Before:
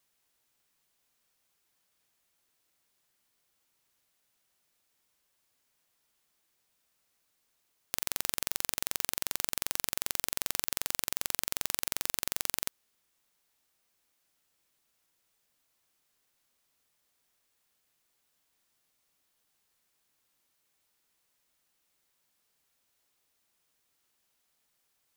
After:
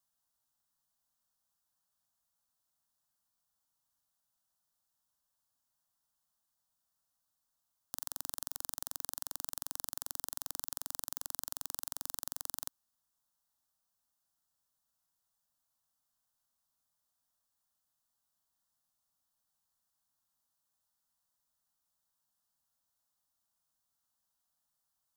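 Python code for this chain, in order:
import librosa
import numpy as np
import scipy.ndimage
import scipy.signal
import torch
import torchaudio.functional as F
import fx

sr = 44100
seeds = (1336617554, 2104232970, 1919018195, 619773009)

y = fx.peak_eq(x, sr, hz=270.0, db=3.0, octaves=0.52)
y = fx.fixed_phaser(y, sr, hz=960.0, stages=4)
y = y * librosa.db_to_amplitude(-6.5)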